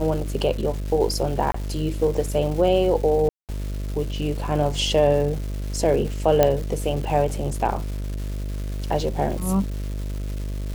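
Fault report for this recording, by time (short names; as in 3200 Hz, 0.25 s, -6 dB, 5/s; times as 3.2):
buzz 50 Hz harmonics 13 -28 dBFS
crackle 590/s -32 dBFS
1.52–1.54 gap 24 ms
3.29–3.49 gap 0.198 s
6.43 pop -4 dBFS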